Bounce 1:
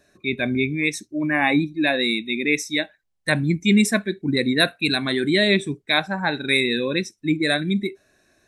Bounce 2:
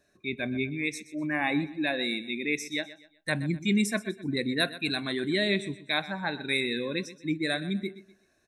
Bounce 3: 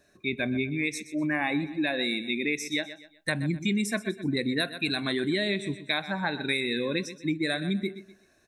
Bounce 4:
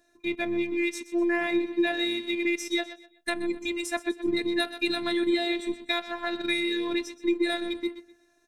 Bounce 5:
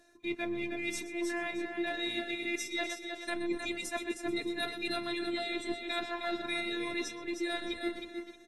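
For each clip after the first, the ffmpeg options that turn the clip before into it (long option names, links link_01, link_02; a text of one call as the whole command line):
ffmpeg -i in.wav -af "aecho=1:1:125|250|375:0.158|0.0539|0.0183,volume=-8.5dB" out.wav
ffmpeg -i in.wav -af "acompressor=threshold=-29dB:ratio=6,volume=5dB" out.wav
ffmpeg -i in.wav -filter_complex "[0:a]equalizer=frequency=220:width_type=o:width=1.4:gain=3,afftfilt=real='hypot(re,im)*cos(PI*b)':imag='0':win_size=512:overlap=0.75,asplit=2[link_01][link_02];[link_02]aeval=exprs='sgn(val(0))*max(abs(val(0))-0.00708,0)':channel_layout=same,volume=-6dB[link_03];[link_01][link_03]amix=inputs=2:normalize=0" out.wav
ffmpeg -i in.wav -af "areverse,acompressor=threshold=-34dB:ratio=10,areverse,aecho=1:1:312|624|936:0.501|0.105|0.0221,volume=3.5dB" -ar 32000 -c:a aac -b:a 32k out.aac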